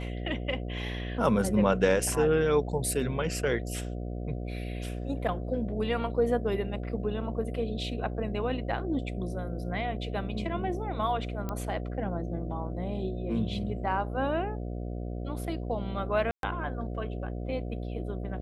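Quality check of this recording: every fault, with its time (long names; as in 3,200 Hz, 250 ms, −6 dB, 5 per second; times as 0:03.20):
mains buzz 60 Hz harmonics 12 −35 dBFS
0:11.49: click −20 dBFS
0:16.31–0:16.43: drop-out 122 ms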